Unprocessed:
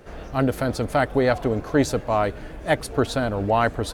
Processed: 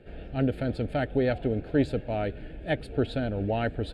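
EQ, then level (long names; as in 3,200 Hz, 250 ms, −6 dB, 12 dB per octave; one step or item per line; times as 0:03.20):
high-frequency loss of the air 100 metres
notch filter 2,000 Hz, Q 10
phaser with its sweep stopped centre 2,600 Hz, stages 4
−3.0 dB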